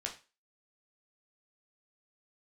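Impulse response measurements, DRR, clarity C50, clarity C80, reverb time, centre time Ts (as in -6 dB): 0.0 dB, 11.0 dB, 17.0 dB, 0.30 s, 15 ms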